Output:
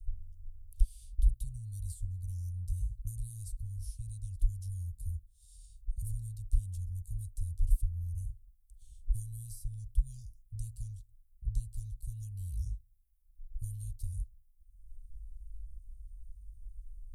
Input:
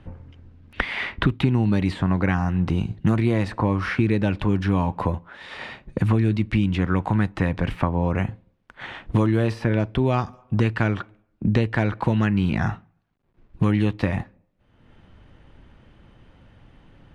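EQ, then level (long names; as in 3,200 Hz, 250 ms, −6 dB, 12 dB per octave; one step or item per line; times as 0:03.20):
inverse Chebyshev band-stop filter 260–2,100 Hz, stop band 80 dB
+10.5 dB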